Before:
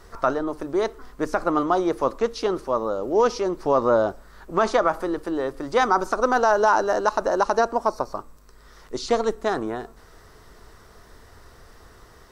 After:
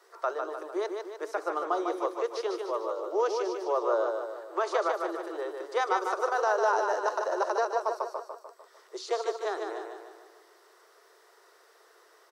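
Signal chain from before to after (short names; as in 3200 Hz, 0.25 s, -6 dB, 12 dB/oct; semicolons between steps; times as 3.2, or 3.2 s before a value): steep high-pass 340 Hz 96 dB/oct; on a send: feedback echo 0.15 s, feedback 50%, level -5 dB; on the sum: gain -8.5 dB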